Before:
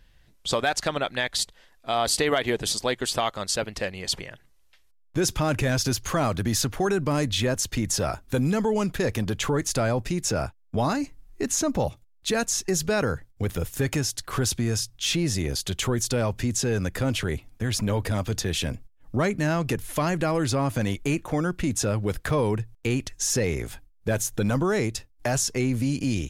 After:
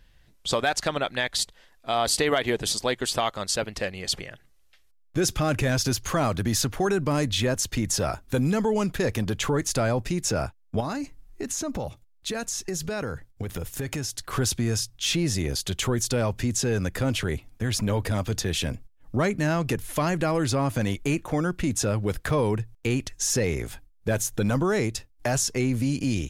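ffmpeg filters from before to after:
-filter_complex "[0:a]asettb=1/sr,asplit=3[s0][s1][s2];[s0]atrim=end=3.834[s3];[s1]atrim=start=3.83:end=5.59,asetpts=PTS-STARTPTS,afade=t=in:d=0.004:c=qsin,afade=t=out:st=1.756:d=0.004:c=qsin,asuperstop=centerf=950:order=4:qfactor=7.4[s4];[s2]atrim=start=5.586[s5];[s3][s4]acrossfade=d=0.004:c1=hsin:c2=qsin[s6];[s6][s5]acrossfade=d=0.004:c1=qsin:c2=hsin,asettb=1/sr,asplit=3[s7][s8][s9];[s7]atrim=end=10.804[s10];[s8]atrim=start=10.8:end=14.3,asetpts=PTS-STARTPTS,afade=t=in:d=0.004:c=qsin,afade=t=out:st=3.496:d=0.004:c=qsin,acompressor=threshold=0.0447:ratio=4:attack=3.2:release=140:knee=1:detection=peak[s11];[s9]atrim=start=14.296[s12];[s10][s11]acrossfade=d=0.004:c1=hsin:c2=qsin[s13];[s13][s12]acrossfade=d=0.004:c1=qsin:c2=hsin"

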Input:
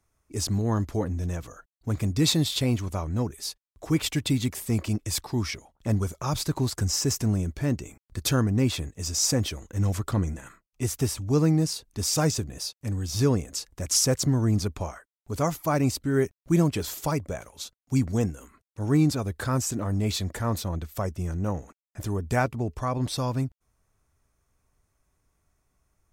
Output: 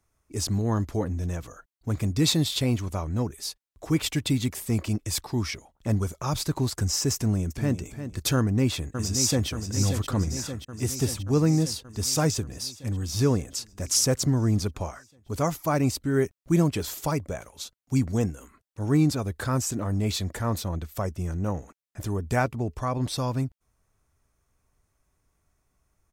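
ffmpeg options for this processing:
-filter_complex "[0:a]asplit=2[s0][s1];[s1]afade=t=in:st=7.15:d=0.01,afade=t=out:st=7.8:d=0.01,aecho=0:1:350|700|1050:0.316228|0.0790569|0.0197642[s2];[s0][s2]amix=inputs=2:normalize=0,asplit=2[s3][s4];[s4]afade=t=in:st=8.36:d=0.01,afade=t=out:st=9.48:d=0.01,aecho=0:1:580|1160|1740|2320|2900|3480|4060|4640|5220|5800|6380:0.421697|0.295188|0.206631|0.144642|0.101249|0.0708745|0.0496122|0.0347285|0.02431|0.017017|0.0119119[s5];[s3][s5]amix=inputs=2:normalize=0"

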